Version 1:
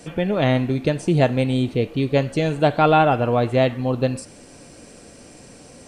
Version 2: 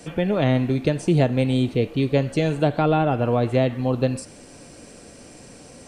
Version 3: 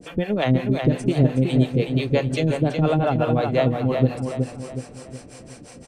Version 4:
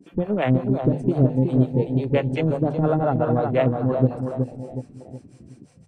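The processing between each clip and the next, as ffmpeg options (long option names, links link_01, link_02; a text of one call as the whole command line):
ffmpeg -i in.wav -filter_complex "[0:a]acrossover=split=470[link_01][link_02];[link_02]acompressor=threshold=-23dB:ratio=4[link_03];[link_01][link_03]amix=inputs=2:normalize=0" out.wav
ffmpeg -i in.wav -filter_complex "[0:a]acrossover=split=440[link_01][link_02];[link_01]aeval=exprs='val(0)*(1-1/2+1/2*cos(2*PI*5.7*n/s))':channel_layout=same[link_03];[link_02]aeval=exprs='val(0)*(1-1/2-1/2*cos(2*PI*5.7*n/s))':channel_layout=same[link_04];[link_03][link_04]amix=inputs=2:normalize=0,asplit=2[link_05][link_06];[link_06]adelay=369,lowpass=frequency=4400:poles=1,volume=-5dB,asplit=2[link_07][link_08];[link_08]adelay=369,lowpass=frequency=4400:poles=1,volume=0.45,asplit=2[link_09][link_10];[link_10]adelay=369,lowpass=frequency=4400:poles=1,volume=0.45,asplit=2[link_11][link_12];[link_12]adelay=369,lowpass=frequency=4400:poles=1,volume=0.45,asplit=2[link_13][link_14];[link_14]adelay=369,lowpass=frequency=4400:poles=1,volume=0.45,asplit=2[link_15][link_16];[link_16]adelay=369,lowpass=frequency=4400:poles=1,volume=0.45[link_17];[link_07][link_09][link_11][link_13][link_15][link_17]amix=inputs=6:normalize=0[link_18];[link_05][link_18]amix=inputs=2:normalize=0,volume=4dB" out.wav
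ffmpeg -i in.wav -af "afwtdn=0.0282,bandreject=frequency=50:width_type=h:width=6,bandreject=frequency=100:width_type=h:width=6,bandreject=frequency=150:width_type=h:width=6" out.wav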